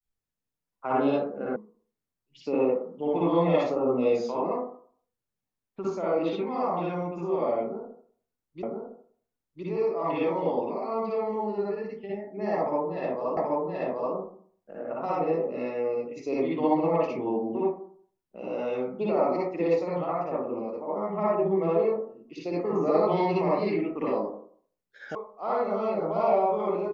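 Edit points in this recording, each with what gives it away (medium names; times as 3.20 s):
1.56 s: sound stops dead
8.63 s: repeat of the last 1.01 s
13.37 s: repeat of the last 0.78 s
25.15 s: sound stops dead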